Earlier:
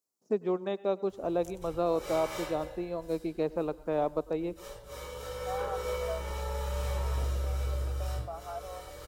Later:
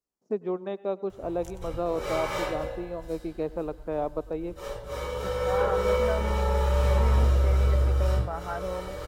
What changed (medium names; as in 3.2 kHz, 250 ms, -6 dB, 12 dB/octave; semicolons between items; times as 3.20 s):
second voice: remove vowel filter a; background +10.0 dB; master: add treble shelf 4 kHz -11 dB